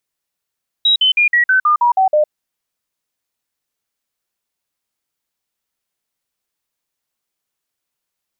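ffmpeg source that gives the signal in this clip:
-f lavfi -i "aevalsrc='0.355*clip(min(mod(t,0.16),0.11-mod(t,0.16))/0.005,0,1)*sin(2*PI*3840*pow(2,-floor(t/0.16)/3)*mod(t,0.16))':d=1.44:s=44100"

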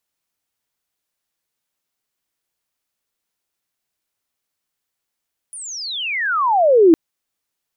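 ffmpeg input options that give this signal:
-f lavfi -i "aevalsrc='pow(10,(-30+24.5*t/1.41)/20)*sin(2*PI*10000*1.41/log(310/10000)*(exp(log(310/10000)*t/1.41)-1))':d=1.41:s=44100"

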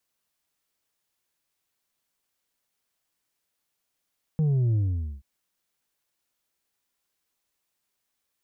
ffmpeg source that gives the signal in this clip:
-f lavfi -i "aevalsrc='0.0944*clip((0.83-t)/0.47,0,1)*tanh(1.58*sin(2*PI*160*0.83/log(65/160)*(exp(log(65/160)*t/0.83)-1)))/tanh(1.58)':d=0.83:s=44100"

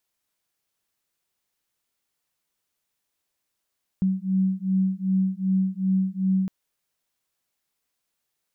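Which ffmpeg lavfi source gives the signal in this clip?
-f lavfi -i "aevalsrc='0.0668*(sin(2*PI*188*t)+sin(2*PI*190.6*t))':d=2.46:s=44100"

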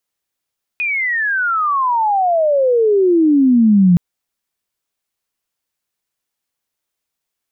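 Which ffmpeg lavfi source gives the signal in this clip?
-f lavfi -i "aevalsrc='pow(10,(-16+9.5*t/3.17)/20)*sin(2*PI*2500*3.17/log(170/2500)*(exp(log(170/2500)*t/3.17)-1))':d=3.17:s=44100"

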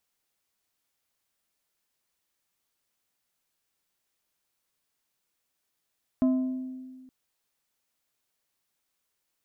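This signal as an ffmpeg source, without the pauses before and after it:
-f lavfi -i "aevalsrc='0.119*pow(10,-3*t/1.73)*sin(2*PI*258*t)+0.0316*pow(10,-3*t/0.911)*sin(2*PI*645*t)+0.00841*pow(10,-3*t/0.656)*sin(2*PI*1032*t)+0.00224*pow(10,-3*t/0.561)*sin(2*PI*1290*t)+0.000596*pow(10,-3*t/0.467)*sin(2*PI*1677*t)':d=0.87:s=44100"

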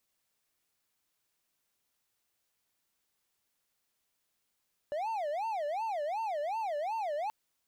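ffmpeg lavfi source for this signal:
-f lavfi -i "aevalsrc='0.0335*(1-4*abs(mod((743.5*t-163.5/(2*PI*2.7)*sin(2*PI*2.7*t))+0.25,1)-0.5))':d=2.38:s=44100"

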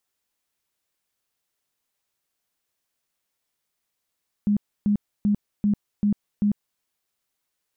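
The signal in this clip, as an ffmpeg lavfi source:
-f lavfi -i "aevalsrc='0.141*sin(2*PI*206*mod(t,0.39))*lt(mod(t,0.39),20/206)':d=2.34:s=44100"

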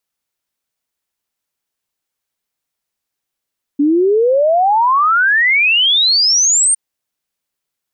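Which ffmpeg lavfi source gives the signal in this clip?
-f lavfi -i "aevalsrc='0.355*clip(min(t,2.96-t)/0.01,0,1)*sin(2*PI*280*2.96/log(9000/280)*(exp(log(9000/280)*t/2.96)-1))':d=2.96:s=44100"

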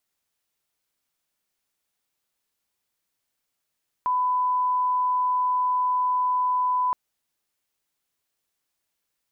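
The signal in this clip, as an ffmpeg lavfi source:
-f lavfi -i "sine=f=1000:d=2.87:r=44100,volume=-1.94dB"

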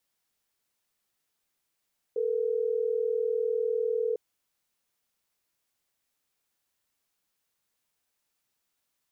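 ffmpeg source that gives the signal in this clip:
-f lavfi -i "aevalsrc='0.0398*(sin(2*PI*440*t)+sin(2*PI*480*t))*clip(min(mod(t,6),2-mod(t,6))/0.005,0,1)':d=3.12:s=44100"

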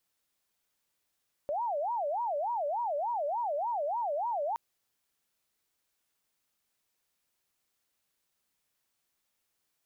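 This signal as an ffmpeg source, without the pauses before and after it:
-f lavfi -i "aevalsrc='0.0355*sin(2*PI*(767.5*t-198.5/(2*PI*3.4)*sin(2*PI*3.4*t)))':d=3.07:s=44100"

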